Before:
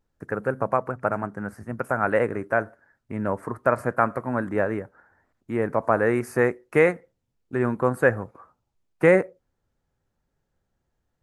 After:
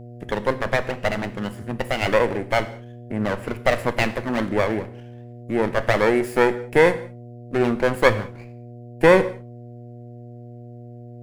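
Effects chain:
lower of the sound and its delayed copy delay 0.41 ms
reverb whose tail is shaped and stops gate 230 ms falling, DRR 11 dB
hum with harmonics 120 Hz, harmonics 6, −44 dBFS −6 dB per octave
level +4.5 dB

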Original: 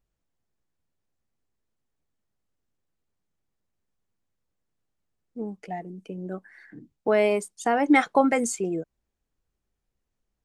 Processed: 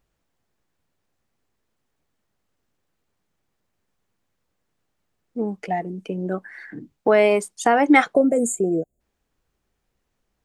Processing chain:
in parallel at +2.5 dB: downward compressor, threshold −29 dBFS, peak gain reduction 14.5 dB
on the sum: spectral tilt +1.5 dB per octave
gain on a spectral selection 0:08.15–0:09.00, 770–6,600 Hz −24 dB
high-shelf EQ 3,900 Hz −10.5 dB
level +4 dB

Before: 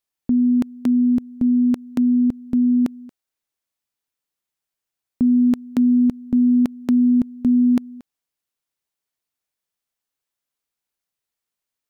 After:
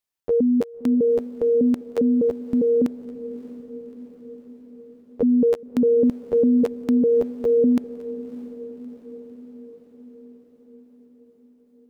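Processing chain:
pitch shifter gated in a rhythm +11 semitones, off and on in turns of 201 ms
feedback delay with all-pass diffusion 614 ms, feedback 63%, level −16 dB
level −2 dB

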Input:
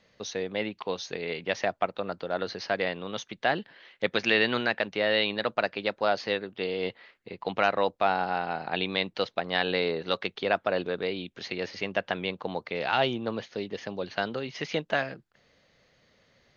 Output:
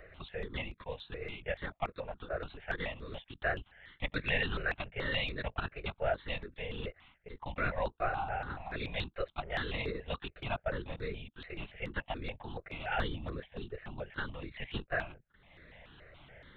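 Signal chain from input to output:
upward compression, threshold −32 dBFS
linear-prediction vocoder at 8 kHz whisper
step-sequenced phaser 7 Hz 910–3,000 Hz
level −5 dB

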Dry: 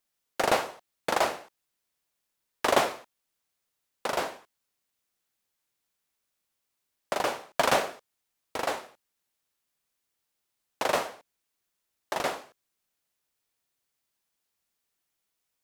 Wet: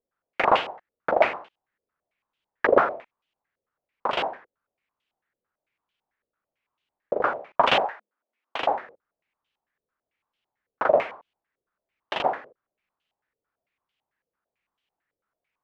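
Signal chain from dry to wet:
0:07.85–0:08.60: frequency shifter +200 Hz
low-pass on a step sequencer 9 Hz 490–3,000 Hz

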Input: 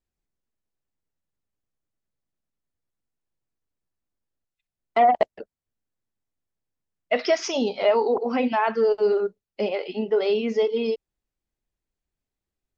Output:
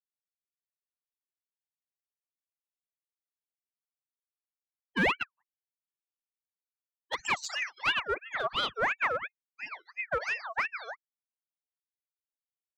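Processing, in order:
spectral dynamics exaggerated over time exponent 3
asymmetric clip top −26.5 dBFS
ring modulator whose carrier an LFO sweeps 1,600 Hz, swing 45%, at 2.9 Hz

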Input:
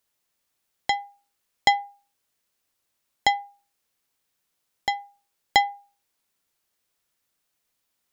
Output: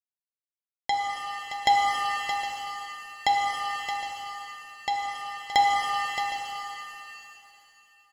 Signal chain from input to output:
downward expander −51 dBFS
on a send: multi-tap delay 621/762 ms −9/−17.5 dB
on the sum: reverb with rising layers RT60 2.8 s, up +7 semitones, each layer −8 dB, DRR −0.5 dB
level −5 dB

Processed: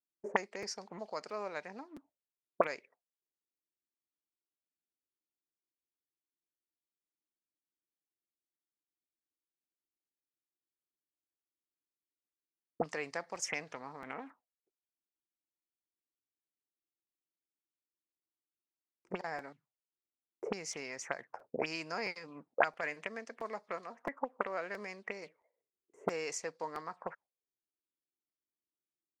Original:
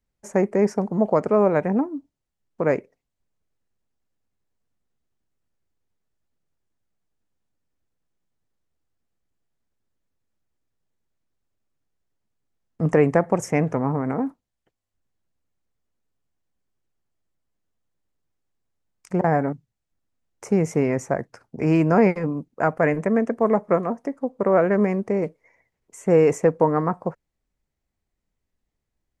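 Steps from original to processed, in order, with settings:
noise gate with hold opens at −43 dBFS
envelope filter 330–4,600 Hz, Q 4.7, up, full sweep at −18.5 dBFS
regular buffer underruns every 0.67 s, samples 256, repeat, from 0:00.62
level +9.5 dB

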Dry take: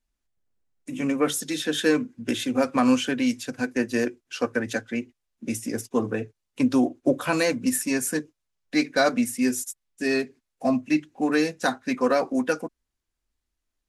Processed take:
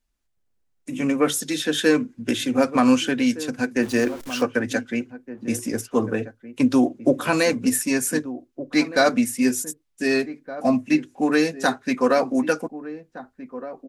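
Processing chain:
0:03.82–0:04.43: converter with a step at zero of −36 dBFS
slap from a distant wall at 260 metres, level −14 dB
level +3 dB

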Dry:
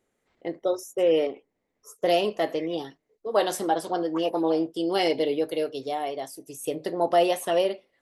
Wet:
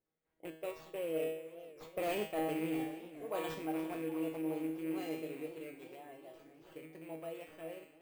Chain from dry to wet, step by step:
loose part that buzzes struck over −37 dBFS, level −23 dBFS
source passing by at 0:02.11, 12 m/s, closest 4.2 metres
low-shelf EQ 190 Hz +4 dB
tuned comb filter 160 Hz, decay 0.66 s, harmonics all, mix 90%
asymmetric clip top −36 dBFS
bad sample-rate conversion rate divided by 4×, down none, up hold
parametric band 6,000 Hz −8.5 dB 1.9 octaves
reversed playback
downward compressor 6 to 1, threshold −48 dBFS, peak gain reduction 12 dB
reversed playback
feedback echo with a swinging delay time 413 ms, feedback 62%, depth 139 cents, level −15.5 dB
level +14.5 dB

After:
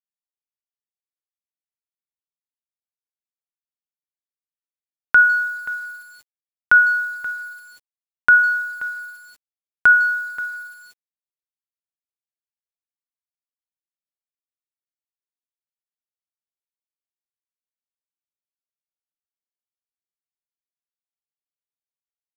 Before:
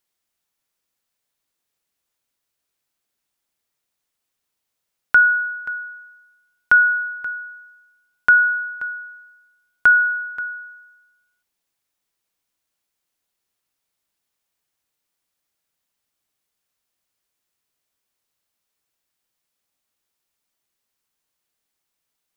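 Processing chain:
far-end echo of a speakerphone 150 ms, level −21 dB
four-comb reverb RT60 0.7 s, combs from 28 ms, DRR 12 dB
bit reduction 8 bits

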